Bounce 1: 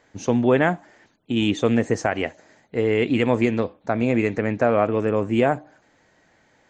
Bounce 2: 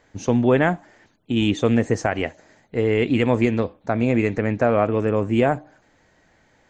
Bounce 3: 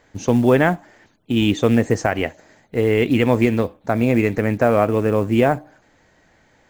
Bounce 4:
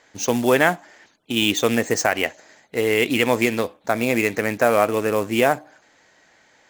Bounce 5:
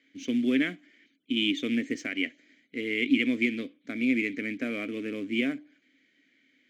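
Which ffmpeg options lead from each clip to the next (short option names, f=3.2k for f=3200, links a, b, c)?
-af "lowshelf=f=78:g=11"
-af "acrusher=bits=8:mode=log:mix=0:aa=0.000001,volume=2.5dB"
-af "adynamicsmooth=sensitivity=6.5:basefreq=6k,aemphasis=mode=production:type=riaa,volume=1dB"
-filter_complex "[0:a]asplit=3[a][b][c];[a]bandpass=f=270:t=q:w=8,volume=0dB[d];[b]bandpass=f=2.29k:t=q:w=8,volume=-6dB[e];[c]bandpass=f=3.01k:t=q:w=8,volume=-9dB[f];[d][e][f]amix=inputs=3:normalize=0,volume=3.5dB"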